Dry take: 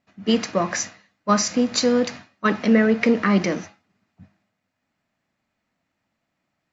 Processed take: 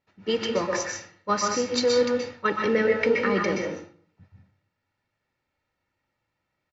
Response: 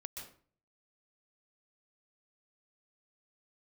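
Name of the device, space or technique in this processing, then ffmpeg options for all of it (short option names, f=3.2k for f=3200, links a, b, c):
microphone above a desk: -filter_complex "[0:a]lowpass=5.7k,aecho=1:1:2.2:0.59[a];[1:a]atrim=start_sample=2205[b];[a][b]afir=irnorm=-1:irlink=0"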